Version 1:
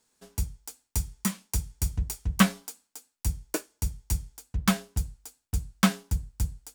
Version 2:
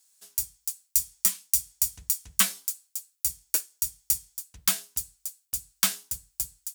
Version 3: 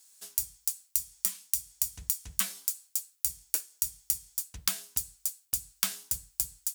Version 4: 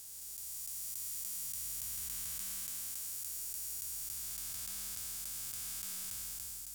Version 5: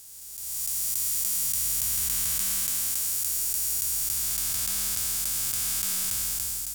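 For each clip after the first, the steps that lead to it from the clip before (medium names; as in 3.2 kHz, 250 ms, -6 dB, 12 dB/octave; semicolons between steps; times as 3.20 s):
pre-emphasis filter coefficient 0.97; trim +8.5 dB
compression 12:1, threshold -30 dBFS, peak gain reduction 15 dB; trim +5 dB
spectral blur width 965 ms; trim +1 dB
level rider gain up to 11.5 dB; trim +2.5 dB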